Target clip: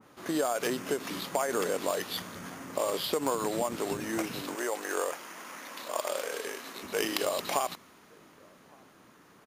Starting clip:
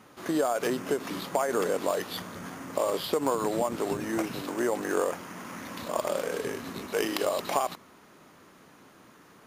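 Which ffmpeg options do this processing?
ffmpeg -i in.wav -filter_complex "[0:a]asettb=1/sr,asplit=3[link_01][link_02][link_03];[link_01]atrim=end=4.554[link_04];[link_02]atrim=start=4.55:end=6.83,asetpts=PTS-STARTPTS,afade=type=in:duration=0.004:curve=qsin,afade=type=out:start_time=2.276:duration=0.004:curve=qsin,highpass=420[link_05];[link_03]atrim=start=6.826[link_06];[link_04][link_05]acrossfade=duration=0.004:curve1=hsin:curve2=qsin[link_07];[link_07][link_06]acrossfade=duration=0.004:curve1=qsin:curve2=hsin,asplit=2[link_08][link_09];[link_09]adelay=1166,volume=-28dB,highshelf=frequency=4000:gain=-26.2[link_10];[link_08][link_10]amix=inputs=2:normalize=0,adynamicequalizer=threshold=0.00708:dfrequency=1700:dqfactor=0.7:tfrequency=1700:tqfactor=0.7:attack=5:release=100:ratio=0.375:range=2.5:mode=boostabove:tftype=highshelf,volume=-3dB" out.wav

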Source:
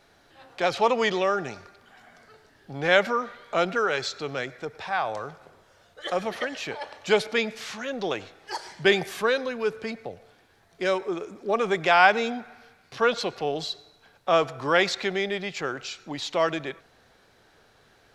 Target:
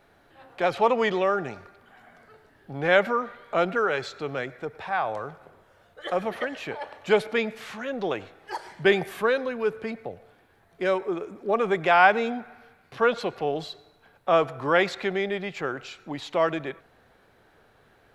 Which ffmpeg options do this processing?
ffmpeg -i in.wav -af "equalizer=frequency=5600:width=0.83:gain=-11.5,volume=1dB" out.wav

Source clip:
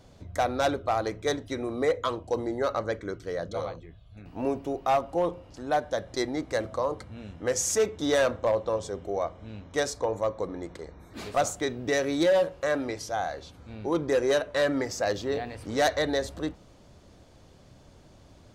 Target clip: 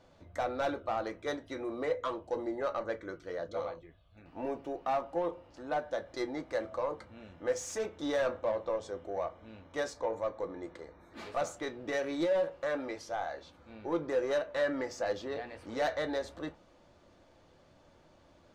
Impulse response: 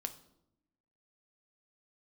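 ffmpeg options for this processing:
-filter_complex "[0:a]asplit=2[link_01][link_02];[link_02]highpass=frequency=720:poles=1,volume=10dB,asoftclip=type=tanh:threshold=-17.5dB[link_03];[link_01][link_03]amix=inputs=2:normalize=0,lowpass=frequency=1900:poles=1,volume=-6dB[link_04];[1:a]atrim=start_sample=2205,atrim=end_sample=3087,asetrate=79380,aresample=44100[link_05];[link_04][link_05]afir=irnorm=-1:irlink=0"

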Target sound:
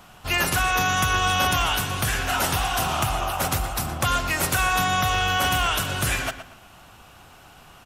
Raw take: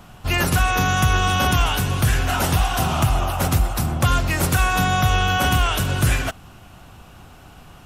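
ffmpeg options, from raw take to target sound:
ffmpeg -i in.wav -filter_complex "[0:a]lowshelf=frequency=390:gain=-10,asplit=2[link_01][link_02];[link_02]adelay=118,lowpass=frequency=4000:poles=1,volume=-11dB,asplit=2[link_03][link_04];[link_04]adelay=118,lowpass=frequency=4000:poles=1,volume=0.32,asplit=2[link_05][link_06];[link_06]adelay=118,lowpass=frequency=4000:poles=1,volume=0.32[link_07];[link_03][link_05][link_07]amix=inputs=3:normalize=0[link_08];[link_01][link_08]amix=inputs=2:normalize=0,asettb=1/sr,asplit=3[link_09][link_10][link_11];[link_09]atrim=end=5.034[link_12];[link_10]atrim=start=5.03:end=5.61,asetpts=PTS-STARTPTS,afade=type=in:duration=0.004:curve=qsin,afade=type=out:start_time=0.576:duration=0.004:curve=qsin,asoftclip=type=hard:threshold=-15.5dB[link_13];[link_11]atrim=start=5.606[link_14];[link_12][link_13]acrossfade=duration=0.004:curve1=hsin:curve2=qsin[link_15];[link_15][link_14]acrossfade=duration=0.004:curve1=qsin:curve2=hsin" out.wav

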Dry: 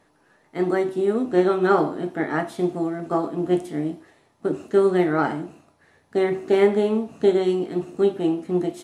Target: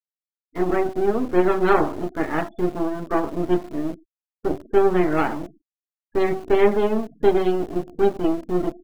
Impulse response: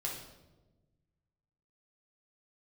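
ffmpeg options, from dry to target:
-filter_complex "[0:a]aeval=exprs='if(lt(val(0),0),0.251*val(0),val(0))':channel_layout=same,afftfilt=real='re*gte(hypot(re,im),0.0158)':imag='im*gte(hypot(re,im),0.0158)':win_size=1024:overlap=0.75,asplit=2[link_01][link_02];[link_02]aeval=exprs='val(0)*gte(abs(val(0)),0.02)':channel_layout=same,volume=-4dB[link_03];[link_01][link_03]amix=inputs=2:normalize=0"

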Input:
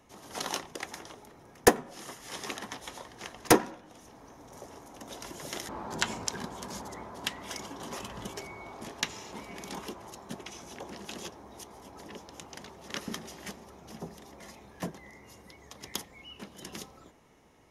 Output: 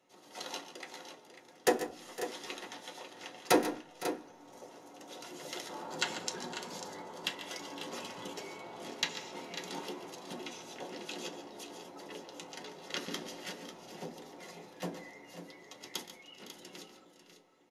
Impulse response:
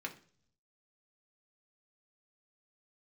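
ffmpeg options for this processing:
-filter_complex "[0:a]dynaudnorm=framelen=330:gausssize=13:maxgain=7dB,aecho=1:1:122|142|510|545:0.126|0.237|0.15|0.282[link_01];[1:a]atrim=start_sample=2205,asetrate=79380,aresample=44100[link_02];[link_01][link_02]afir=irnorm=-1:irlink=0,volume=-2dB"

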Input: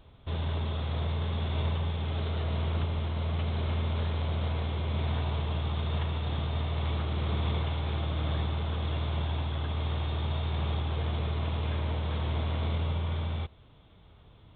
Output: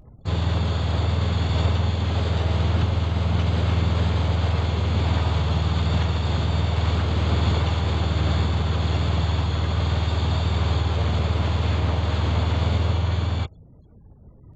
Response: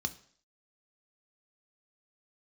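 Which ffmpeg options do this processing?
-filter_complex "[0:a]afftfilt=real='re*gte(hypot(re,im),0.00282)':imag='im*gte(hypot(re,im),0.00282)':win_size=1024:overlap=0.75,asplit=3[link_01][link_02][link_03];[link_02]asetrate=55563,aresample=44100,atempo=0.793701,volume=-4dB[link_04];[link_03]asetrate=88200,aresample=44100,atempo=0.5,volume=-13dB[link_05];[link_01][link_04][link_05]amix=inputs=3:normalize=0,volume=7dB"

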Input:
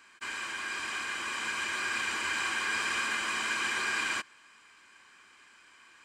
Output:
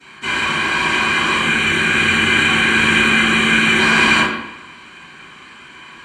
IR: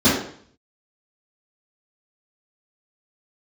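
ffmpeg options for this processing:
-filter_complex "[0:a]asettb=1/sr,asplit=3[link_01][link_02][link_03];[link_01]atrim=end=1.364[link_04];[link_02]atrim=start=1.36:end=3.78,asetpts=PTS-STARTPTS,afade=type=in:duration=0.004:curve=qsin,afade=type=out:start_time=2.416:duration=0.004:curve=qsin,equalizer=frequency=630:width_type=o:width=0.33:gain=-7,equalizer=frequency=1000:width_type=o:width=0.33:gain=-10,equalizer=frequency=5000:width_type=o:width=0.33:gain=-12[link_05];[link_03]atrim=start=3.776[link_06];[link_04][link_05]acrossfade=duration=0.004:curve1=hsin:curve2=qsin[link_07];[link_07][link_06]acrossfade=duration=0.004:curve1=qsin:curve2=hsin[link_08];[1:a]atrim=start_sample=2205,asetrate=27783,aresample=44100[link_09];[link_08][link_09]afir=irnorm=-1:irlink=0,volume=-4.5dB"

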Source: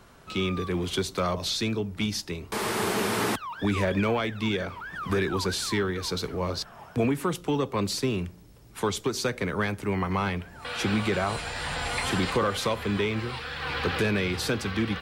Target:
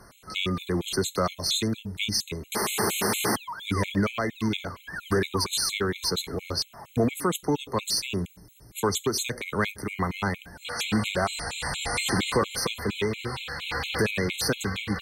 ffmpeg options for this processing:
ffmpeg -i in.wav -af "aemphasis=mode=production:type=cd,afftfilt=real='re*gt(sin(2*PI*4.3*pts/sr)*(1-2*mod(floor(b*sr/1024/2100),2)),0)':imag='im*gt(sin(2*PI*4.3*pts/sr)*(1-2*mod(floor(b*sr/1024/2100),2)),0)':win_size=1024:overlap=0.75,volume=2.5dB" out.wav

